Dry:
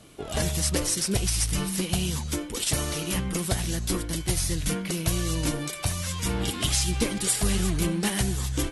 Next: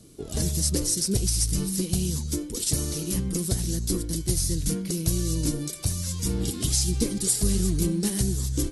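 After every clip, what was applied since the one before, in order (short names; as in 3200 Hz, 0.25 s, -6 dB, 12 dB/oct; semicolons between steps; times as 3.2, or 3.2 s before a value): band shelf 1400 Hz -13 dB 2.8 oct; gain +1.5 dB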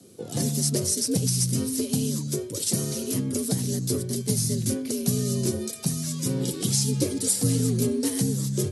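frequency shift +71 Hz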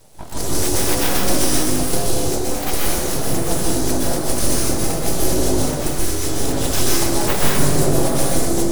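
full-wave rectifier; plate-style reverb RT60 1.8 s, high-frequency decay 0.55×, pre-delay 0.11 s, DRR -6 dB; gain +3.5 dB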